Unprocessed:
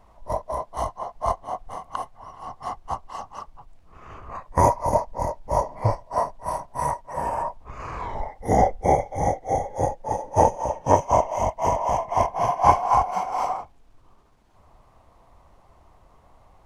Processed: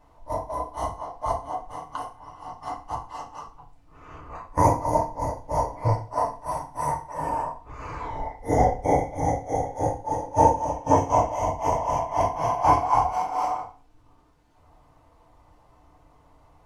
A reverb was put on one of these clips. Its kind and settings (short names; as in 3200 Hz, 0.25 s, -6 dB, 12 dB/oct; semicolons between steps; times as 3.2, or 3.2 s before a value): FDN reverb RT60 0.38 s, low-frequency decay 1.2×, high-frequency decay 0.9×, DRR -2.5 dB; gain -6 dB